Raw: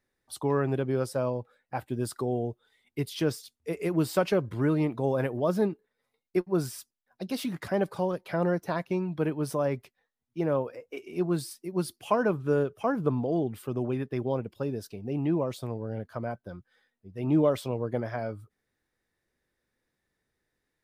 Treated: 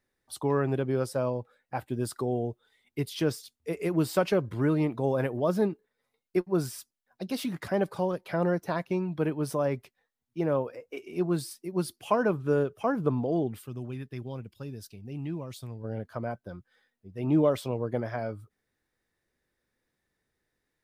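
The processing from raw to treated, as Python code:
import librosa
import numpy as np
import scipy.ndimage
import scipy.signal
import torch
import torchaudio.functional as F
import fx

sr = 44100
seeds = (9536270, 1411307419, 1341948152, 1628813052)

y = fx.peak_eq(x, sr, hz=580.0, db=-13.0, octaves=2.9, at=(13.59, 15.83), fade=0.02)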